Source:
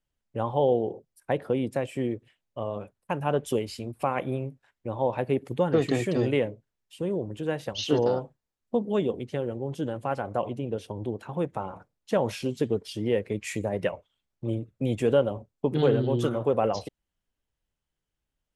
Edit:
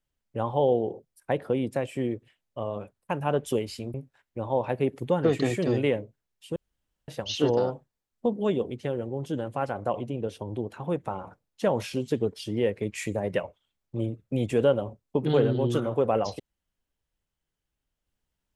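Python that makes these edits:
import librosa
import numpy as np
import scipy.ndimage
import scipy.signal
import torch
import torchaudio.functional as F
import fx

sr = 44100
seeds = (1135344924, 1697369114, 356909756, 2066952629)

y = fx.edit(x, sr, fx.cut(start_s=3.94, length_s=0.49),
    fx.room_tone_fill(start_s=7.05, length_s=0.52), tone=tone)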